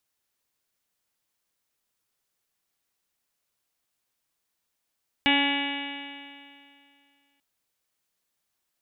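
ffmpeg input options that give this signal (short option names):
-f lavfi -i "aevalsrc='0.0708*pow(10,-3*t/2.39)*sin(2*PI*280.08*t)+0.0178*pow(10,-3*t/2.39)*sin(2*PI*560.66*t)+0.0501*pow(10,-3*t/2.39)*sin(2*PI*842.23*t)+0.01*pow(10,-3*t/2.39)*sin(2*PI*1125.27*t)+0.01*pow(10,-3*t/2.39)*sin(2*PI*1410.29*t)+0.0398*pow(10,-3*t/2.39)*sin(2*PI*1697.75*t)+0.0335*pow(10,-3*t/2.39)*sin(2*PI*1988.13*t)+0.0631*pow(10,-3*t/2.39)*sin(2*PI*2281.9*t)+0.0282*pow(10,-3*t/2.39)*sin(2*PI*2579.51*t)+0.0708*pow(10,-3*t/2.39)*sin(2*PI*2881.42*t)+0.0178*pow(10,-3*t/2.39)*sin(2*PI*3188.05*t)+0.0251*pow(10,-3*t/2.39)*sin(2*PI*3499.82*t)+0.00891*pow(10,-3*t/2.39)*sin(2*PI*3817.16*t)':d=2.14:s=44100"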